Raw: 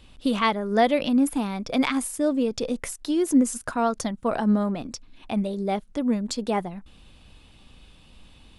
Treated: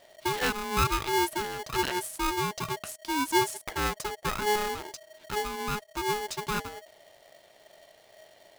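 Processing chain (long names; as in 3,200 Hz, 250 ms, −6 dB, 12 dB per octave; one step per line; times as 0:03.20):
ring modulator with a square carrier 630 Hz
level −6 dB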